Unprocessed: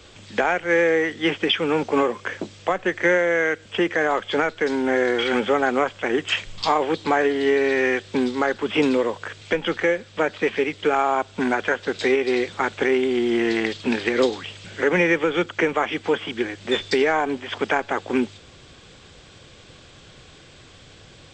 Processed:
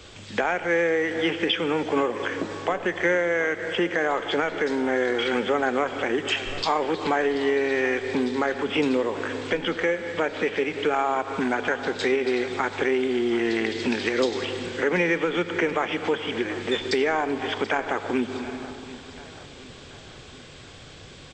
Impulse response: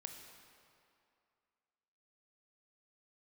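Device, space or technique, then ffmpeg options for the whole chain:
ducked reverb: -filter_complex "[0:a]asplit=3[a][b][c];[1:a]atrim=start_sample=2205[d];[b][d]afir=irnorm=-1:irlink=0[e];[c]apad=whole_len=940966[f];[e][f]sidechaincompress=threshold=-30dB:ratio=8:attack=20:release=143,volume=8.5dB[g];[a][g]amix=inputs=2:normalize=0,asettb=1/sr,asplit=3[h][i][j];[h]atrim=end=13.774[k];[i]atrim=start=13.77:end=14.45,asetpts=PTS-STARTPTS,afade=t=in:d=0.004:c=qsin,afade=t=out:st=0.676:d=0.004:c=qsin,equalizer=f=5.5k:w=1.4:g=5[l];[j]atrim=start=14.446[m];[k][l]acrossfade=d=0.004:c1=hsin:c2=qsin[n];[n][m]acrossfade=d=0.004:c1=qsin:c2=hsin,aecho=1:1:732|1464|2196|2928|3660:0.133|0.0733|0.0403|0.0222|0.0122,volume=-6dB"

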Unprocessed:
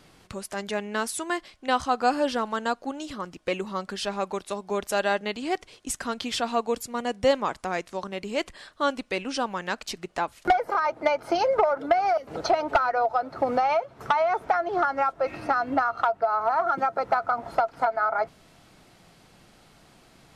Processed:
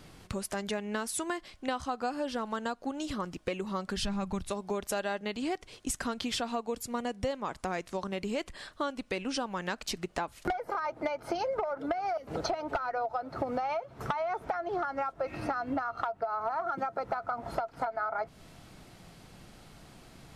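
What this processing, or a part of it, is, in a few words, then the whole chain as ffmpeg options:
ASMR close-microphone chain: -filter_complex "[0:a]asplit=3[a][b][c];[a]afade=t=out:st=3.96:d=0.02[d];[b]asubboost=boost=11:cutoff=140,afade=t=in:st=3.96:d=0.02,afade=t=out:st=4.49:d=0.02[e];[c]afade=t=in:st=4.49:d=0.02[f];[d][e][f]amix=inputs=3:normalize=0,lowshelf=f=200:g=7,acompressor=threshold=-30dB:ratio=6,highshelf=f=11k:g=3.5"

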